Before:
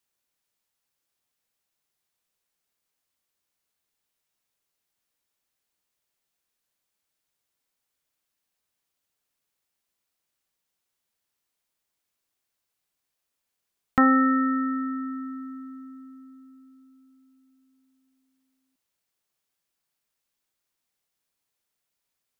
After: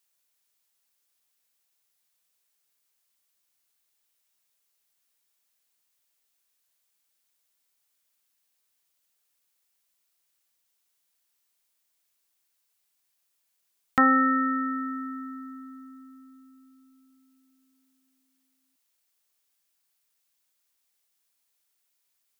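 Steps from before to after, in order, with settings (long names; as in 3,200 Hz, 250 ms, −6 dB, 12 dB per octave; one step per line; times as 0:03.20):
spectral tilt +2 dB per octave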